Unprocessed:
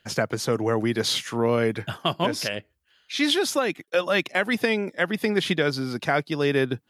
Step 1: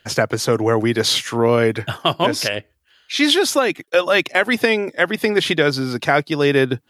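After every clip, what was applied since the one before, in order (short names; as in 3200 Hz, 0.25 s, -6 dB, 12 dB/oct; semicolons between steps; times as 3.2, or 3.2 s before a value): bell 190 Hz -11 dB 0.27 oct; gain +7 dB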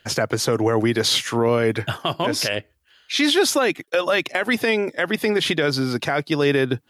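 limiter -9.5 dBFS, peak gain reduction 8 dB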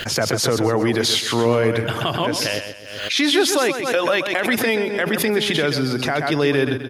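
feedback echo 0.129 s, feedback 37%, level -8.5 dB; backwards sustainer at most 58 dB/s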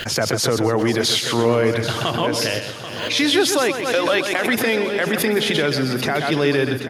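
feedback echo 0.786 s, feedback 43%, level -12 dB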